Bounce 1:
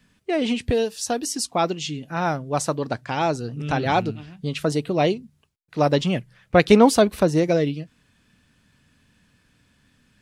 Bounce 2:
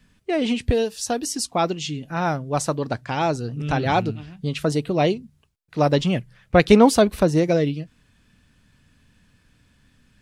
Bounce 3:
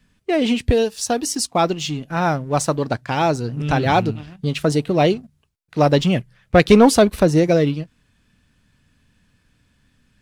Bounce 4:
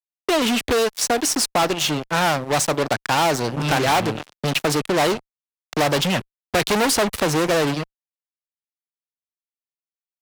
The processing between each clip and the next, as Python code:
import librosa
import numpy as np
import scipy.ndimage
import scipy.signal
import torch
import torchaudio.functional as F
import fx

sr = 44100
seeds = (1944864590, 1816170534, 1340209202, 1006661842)

y1 = fx.low_shelf(x, sr, hz=69.0, db=11.0)
y2 = fx.leveller(y1, sr, passes=1)
y3 = fx.fuzz(y2, sr, gain_db=24.0, gate_db=-31.0)
y3 = fx.low_shelf(y3, sr, hz=290.0, db=-10.5)
y3 = fx.band_squash(y3, sr, depth_pct=40)